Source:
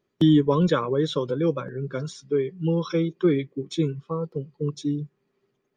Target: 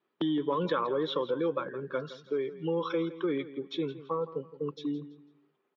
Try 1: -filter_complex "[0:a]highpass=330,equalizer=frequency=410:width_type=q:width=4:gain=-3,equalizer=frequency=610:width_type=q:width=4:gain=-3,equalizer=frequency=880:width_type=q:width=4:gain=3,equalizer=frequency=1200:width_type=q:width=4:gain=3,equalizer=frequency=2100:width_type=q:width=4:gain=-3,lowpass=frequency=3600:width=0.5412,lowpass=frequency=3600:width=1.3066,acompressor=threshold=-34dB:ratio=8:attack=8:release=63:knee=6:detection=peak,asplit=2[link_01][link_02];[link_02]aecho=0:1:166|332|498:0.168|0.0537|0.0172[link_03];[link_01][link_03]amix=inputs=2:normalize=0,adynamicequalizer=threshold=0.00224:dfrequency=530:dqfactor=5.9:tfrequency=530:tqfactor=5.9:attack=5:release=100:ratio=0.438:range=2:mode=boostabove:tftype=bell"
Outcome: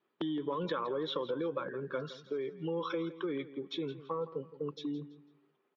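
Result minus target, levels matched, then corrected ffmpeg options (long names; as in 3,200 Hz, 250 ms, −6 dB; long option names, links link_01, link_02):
downward compressor: peak gain reduction +6 dB
-filter_complex "[0:a]highpass=330,equalizer=frequency=410:width_type=q:width=4:gain=-3,equalizer=frequency=610:width_type=q:width=4:gain=-3,equalizer=frequency=880:width_type=q:width=4:gain=3,equalizer=frequency=1200:width_type=q:width=4:gain=3,equalizer=frequency=2100:width_type=q:width=4:gain=-3,lowpass=frequency=3600:width=0.5412,lowpass=frequency=3600:width=1.3066,acompressor=threshold=-27dB:ratio=8:attack=8:release=63:knee=6:detection=peak,asplit=2[link_01][link_02];[link_02]aecho=0:1:166|332|498:0.168|0.0537|0.0172[link_03];[link_01][link_03]amix=inputs=2:normalize=0,adynamicequalizer=threshold=0.00224:dfrequency=530:dqfactor=5.9:tfrequency=530:tqfactor=5.9:attack=5:release=100:ratio=0.438:range=2:mode=boostabove:tftype=bell"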